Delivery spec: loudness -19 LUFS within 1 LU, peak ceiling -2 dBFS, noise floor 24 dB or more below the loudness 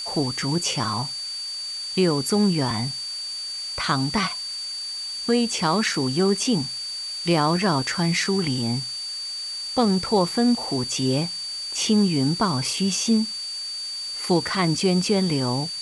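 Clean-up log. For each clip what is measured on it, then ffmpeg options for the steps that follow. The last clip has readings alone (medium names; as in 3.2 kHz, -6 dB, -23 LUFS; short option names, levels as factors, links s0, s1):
steady tone 4.6 kHz; tone level -29 dBFS; noise floor -32 dBFS; noise floor target -47 dBFS; loudness -23.0 LUFS; peak level -9.0 dBFS; loudness target -19.0 LUFS
-> -af "bandreject=f=4600:w=30"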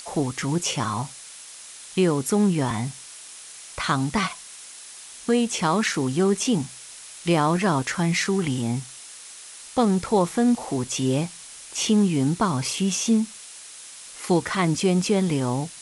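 steady tone not found; noise floor -43 dBFS; noise floor target -48 dBFS
-> -af "afftdn=nr=6:nf=-43"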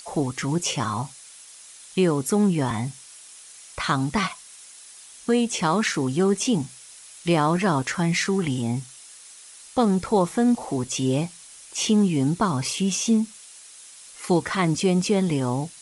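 noise floor -46 dBFS; noise floor target -48 dBFS
-> -af "afftdn=nr=6:nf=-46"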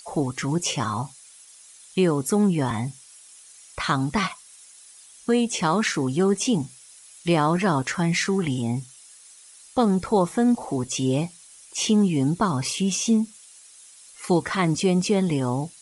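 noise floor -49 dBFS; loudness -23.5 LUFS; peak level -10.0 dBFS; loudness target -19.0 LUFS
-> -af "volume=1.68"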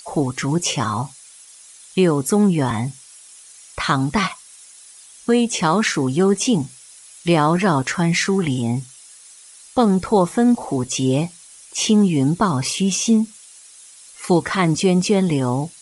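loudness -19.0 LUFS; peak level -5.5 dBFS; noise floor -45 dBFS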